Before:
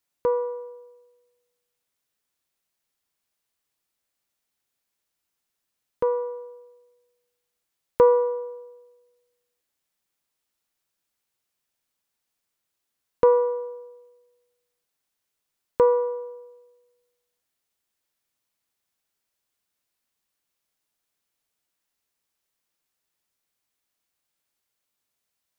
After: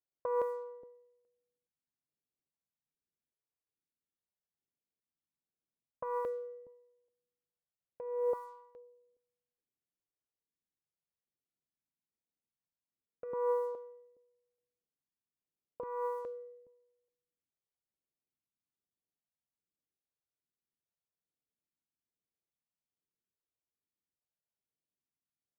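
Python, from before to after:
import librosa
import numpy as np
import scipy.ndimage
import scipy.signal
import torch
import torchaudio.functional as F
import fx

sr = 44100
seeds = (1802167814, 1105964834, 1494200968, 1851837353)

y = fx.env_lowpass(x, sr, base_hz=310.0, full_db=-24.0)
y = fx.tilt_eq(y, sr, slope=3.0)
y = fx.over_compress(y, sr, threshold_db=-29.0, ratio=-1.0)
y = fx.comb_fb(y, sr, f0_hz=150.0, decay_s=0.99, harmonics='odd', damping=0.0, mix_pct=60)
y = fx.filter_held_notch(y, sr, hz=2.4, low_hz=210.0, high_hz=1700.0)
y = y * librosa.db_to_amplitude(4.5)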